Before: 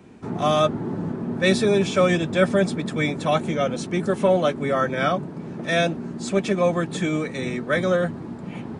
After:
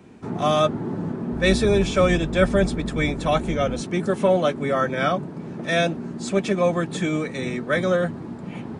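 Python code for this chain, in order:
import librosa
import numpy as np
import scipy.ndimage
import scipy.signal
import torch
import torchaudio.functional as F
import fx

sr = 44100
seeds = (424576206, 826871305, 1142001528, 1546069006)

y = fx.octave_divider(x, sr, octaves=2, level_db=-4.0, at=(1.32, 3.81))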